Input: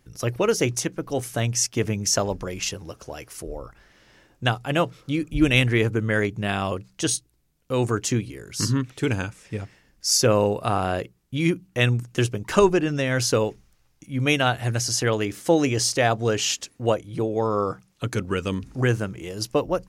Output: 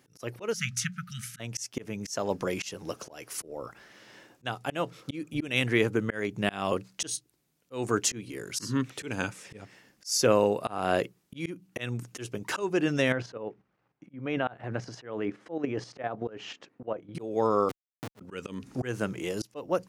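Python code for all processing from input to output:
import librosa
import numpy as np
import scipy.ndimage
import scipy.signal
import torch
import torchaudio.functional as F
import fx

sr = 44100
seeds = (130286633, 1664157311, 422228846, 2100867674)

y = fx.chain(x, sr, fx.brickwall_bandstop(low_hz=220.0, high_hz=1200.0),
    fx.high_shelf(hz=4700.0, db=-8.5),
    fx.hum_notches(base_hz=60, count=10), at=(0.53, 1.4))
y = fx.chain(y, sr, fx.lowpass(hz=1600.0, slope=12),
    fx.low_shelf(hz=72.0, db=-7.5),
    fx.level_steps(step_db=10), at=(13.12, 17.15))
y = fx.chain(y, sr, fx.gaussian_blur(sigma=4.9),
    fx.schmitt(flips_db=-26.0), at=(17.69, 18.21))
y = scipy.signal.sosfilt(scipy.signal.butter(2, 170.0, 'highpass', fs=sr, output='sos'), y)
y = fx.rider(y, sr, range_db=3, speed_s=0.5)
y = fx.auto_swell(y, sr, attack_ms=278.0)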